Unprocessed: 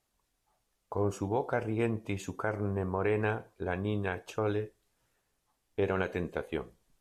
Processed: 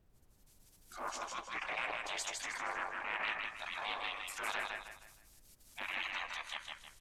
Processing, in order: treble ducked by the level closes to 2100 Hz, closed at -28.5 dBFS; notches 60/120/180/240/300 Hz; spectral gate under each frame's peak -25 dB weak; HPF 160 Hz; tone controls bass -13 dB, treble +11 dB; limiter -40 dBFS, peak gain reduction 11.5 dB; transient shaper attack -6 dB, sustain -10 dB; AGC gain up to 12.5 dB; added noise brown -70 dBFS; feedback echo 0.157 s, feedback 36%, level -3 dB; Doppler distortion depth 0.21 ms; gain +3.5 dB

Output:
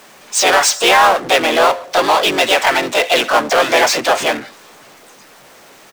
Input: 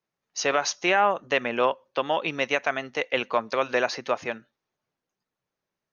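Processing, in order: harmoniser -4 st -17 dB, +3 st -5 dB, +5 st 0 dB; power-law curve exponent 0.5; tone controls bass -10 dB, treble 0 dB; gain +1.5 dB

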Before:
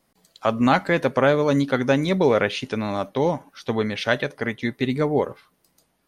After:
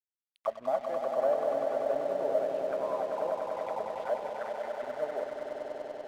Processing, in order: auto-wah 640–3000 Hz, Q 12, down, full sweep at -19 dBFS; swelling echo 97 ms, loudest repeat 5, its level -6.5 dB; crossover distortion -50.5 dBFS

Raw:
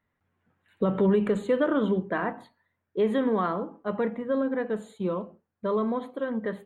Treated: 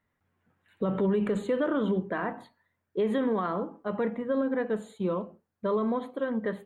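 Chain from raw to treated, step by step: limiter -19.5 dBFS, peak gain reduction 4.5 dB

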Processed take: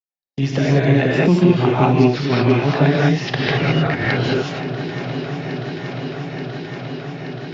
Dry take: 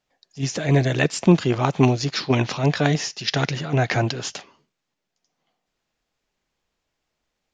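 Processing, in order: gate -41 dBFS, range -57 dB; Bessel low-pass 3000 Hz, order 4; 3.32–4.21 negative-ratio compressor -27 dBFS, ratio -0.5; swung echo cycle 0.878 s, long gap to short 1.5:1, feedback 62%, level -21 dB; non-linear reverb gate 0.24 s rising, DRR -5 dB; three-band squash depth 70%; gain -1 dB

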